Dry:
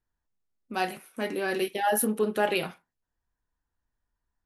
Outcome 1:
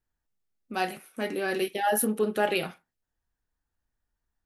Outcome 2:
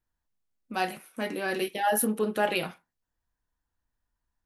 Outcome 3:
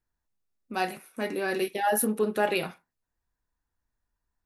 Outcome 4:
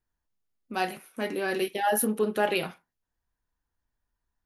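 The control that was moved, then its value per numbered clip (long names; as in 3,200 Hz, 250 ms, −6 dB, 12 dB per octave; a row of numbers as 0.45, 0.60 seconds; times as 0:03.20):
notch filter, centre frequency: 1,000, 400, 3,100, 7,900 Hertz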